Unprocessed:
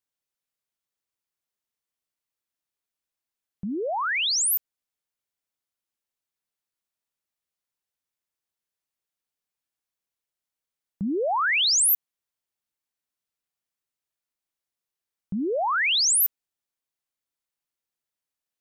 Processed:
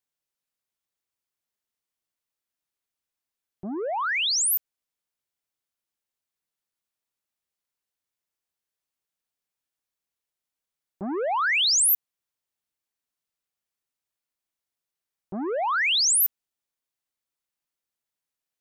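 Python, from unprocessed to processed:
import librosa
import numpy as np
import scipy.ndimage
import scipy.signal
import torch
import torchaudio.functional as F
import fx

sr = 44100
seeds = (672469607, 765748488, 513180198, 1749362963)

y = fx.transformer_sat(x, sr, knee_hz=930.0)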